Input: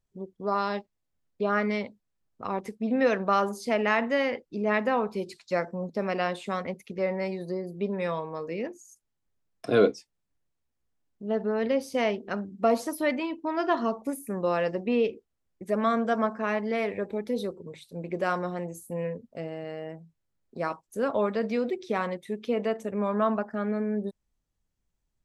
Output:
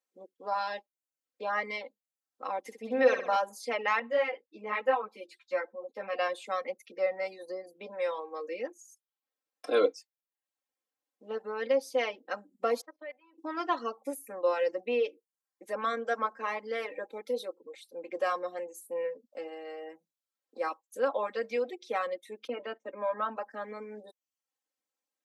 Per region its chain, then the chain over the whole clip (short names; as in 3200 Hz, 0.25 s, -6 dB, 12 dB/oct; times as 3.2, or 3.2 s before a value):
2.6–3.36 low shelf 120 Hz +9.5 dB + flutter echo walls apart 11.1 m, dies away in 0.77 s
3.99–6.19 resonant high shelf 4000 Hz -6.5 dB, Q 1.5 + ensemble effect
12.81–13.38 HPF 580 Hz + tape spacing loss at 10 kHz 41 dB + level quantiser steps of 19 dB
22.47–23.37 gate -37 dBFS, range -17 dB + air absorption 200 m + comb 3.2 ms, depth 58%
whole clip: HPF 360 Hz 24 dB/oct; reverb removal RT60 0.51 s; comb 3.8 ms, depth 97%; gain -4.5 dB